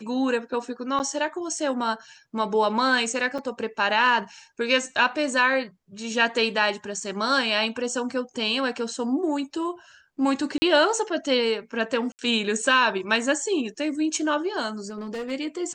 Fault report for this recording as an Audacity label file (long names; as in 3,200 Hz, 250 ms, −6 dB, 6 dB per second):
0.990000	1.000000	drop-out 9 ms
3.380000	3.390000	drop-out 5.9 ms
10.580000	10.620000	drop-out 40 ms
12.120000	12.190000	drop-out 69 ms
14.890000	15.320000	clipping −28 dBFS